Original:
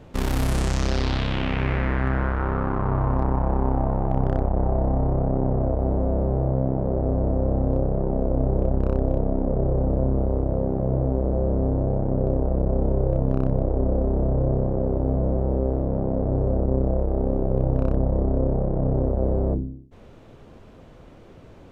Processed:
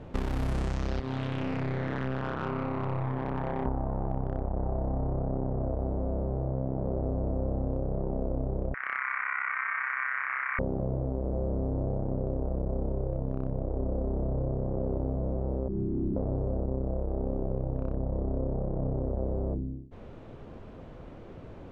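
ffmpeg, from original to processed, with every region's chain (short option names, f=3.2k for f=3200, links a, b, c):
-filter_complex "[0:a]asettb=1/sr,asplit=3[a][b][c];[a]atrim=end=1.004[d];[b]atrim=start=1:end=3.66,asetpts=PTS-STARTPTS,afade=t=in:d=0.004:c=qsin,afade=t=out:st=2.656:d=0.004:c=qsin,highpass=110,lowpass=4.1k,asplit=2[e][f];[f]adelay=38,volume=-4dB[g];[e][g]amix=inputs=2:normalize=0,atrim=end_sample=117306,aeval=exprs='(tanh(15.8*val(0)+0.55)-tanh(0.55))/15.8':c=same[h];[c]atrim=start=3.656[i];[d][h]acrossfade=d=0.004:c1=hsin:c2=qsin[j];[j][i]acrossfade=d=0.004:c1=qsin:c2=hsin,asettb=1/sr,asplit=3[k][l][m];[k]atrim=end=8.744[n];[l]atrim=start=8.74:end=10.59,asetpts=PTS-STARTPTS,afade=t=in:d=0.004:c=qsin,afade=t=out:st=1.846:d=0.004:c=qsin,highpass=110,equalizer=f=4.4k:t=o:w=2.2:g=-8.5,aeval=exprs='val(0)*sin(2*PI*1700*n/s)':c=same[o];[m]atrim=start=10.586[p];[n][o]acrossfade=d=0.004:c1=hsin:c2=qsin[q];[q][p]acrossfade=d=0.004:c1=qsin:c2=hsin,asettb=1/sr,asplit=3[r][s][t];[r]atrim=end=15.684[u];[s]atrim=start=15.68:end=16.16,asetpts=PTS-STARTPTS,afade=t=in:d=0.004:c=qsin,afade=t=out:st=0.476:d=0.004:c=qsin,highpass=f=79:w=0.5412,highpass=f=79:w=1.3066,afreqshift=-460[v];[t]atrim=start=16.156[w];[u][v]acrossfade=d=0.004:c1=hsin:c2=qsin[x];[x][w]acrossfade=d=0.004:c1=qsin:c2=hsin,lowpass=f=2.2k:p=1,acompressor=threshold=-28dB:ratio=6,volume=1.5dB"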